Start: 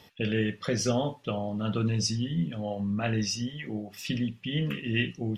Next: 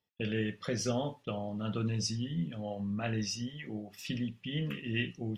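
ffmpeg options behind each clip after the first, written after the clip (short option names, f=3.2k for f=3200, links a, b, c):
-af "agate=range=-26dB:threshold=-46dB:ratio=16:detection=peak,volume=-5.5dB"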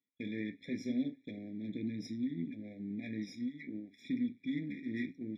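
-filter_complex "[0:a]aeval=exprs='if(lt(val(0),0),0.251*val(0),val(0))':c=same,asplit=3[a][b][c];[a]bandpass=f=270:t=q:w=8,volume=0dB[d];[b]bandpass=f=2.29k:t=q:w=8,volume=-6dB[e];[c]bandpass=f=3.01k:t=q:w=8,volume=-9dB[f];[d][e][f]amix=inputs=3:normalize=0,afftfilt=real='re*eq(mod(floor(b*sr/1024/830),2),0)':imag='im*eq(mod(floor(b*sr/1024/830),2),0)':win_size=1024:overlap=0.75,volume=11.5dB"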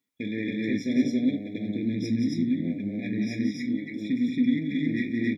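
-af "aecho=1:1:177.8|274.1:0.501|1,volume=8.5dB"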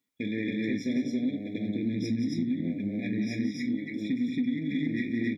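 -af "acompressor=threshold=-25dB:ratio=6"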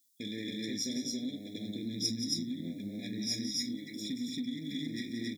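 -af "aexciter=amount=9.3:drive=6.9:freq=3.6k,volume=-8.5dB"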